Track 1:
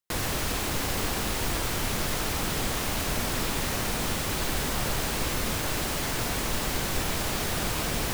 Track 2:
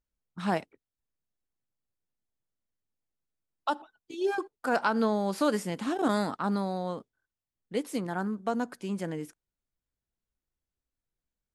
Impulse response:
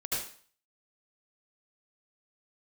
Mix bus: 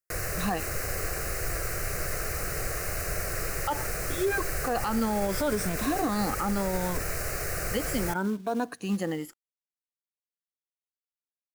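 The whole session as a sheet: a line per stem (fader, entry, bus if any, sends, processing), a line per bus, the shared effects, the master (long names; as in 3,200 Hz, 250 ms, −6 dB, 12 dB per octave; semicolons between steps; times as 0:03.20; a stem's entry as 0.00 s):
−0.5 dB, 0.00 s, no send, phaser with its sweep stopped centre 920 Hz, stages 6
+2.5 dB, 0.00 s, no send, rippled gain that drifts along the octave scale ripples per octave 1.6, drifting +0.72 Hz, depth 14 dB; log-companded quantiser 6 bits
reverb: not used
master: brickwall limiter −18.5 dBFS, peak gain reduction 10.5 dB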